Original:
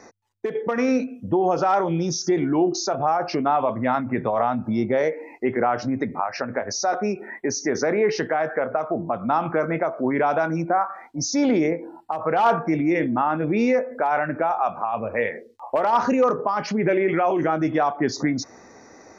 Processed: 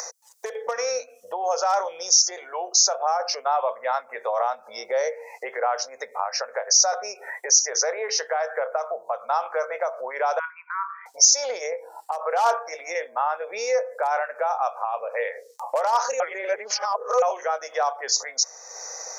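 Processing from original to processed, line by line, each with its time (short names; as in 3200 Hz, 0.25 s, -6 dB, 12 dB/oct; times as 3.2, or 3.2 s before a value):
10.39–11.06 brick-wall FIR band-pass 940–3400 Hz
16.2–17.22 reverse
whole clip: elliptic high-pass 490 Hz, stop band 40 dB; resonant high shelf 4300 Hz +13.5 dB, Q 1.5; upward compressor, threshold -25 dBFS; gain -1 dB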